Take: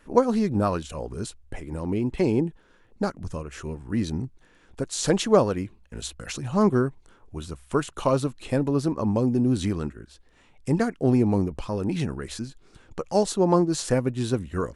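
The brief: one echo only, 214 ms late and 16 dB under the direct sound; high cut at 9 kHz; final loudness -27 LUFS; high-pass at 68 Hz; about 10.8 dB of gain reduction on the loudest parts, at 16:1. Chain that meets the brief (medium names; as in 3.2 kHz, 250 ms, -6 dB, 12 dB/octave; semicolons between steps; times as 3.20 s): high-pass 68 Hz; low-pass 9 kHz; compression 16:1, threshold -22 dBFS; delay 214 ms -16 dB; trim +3 dB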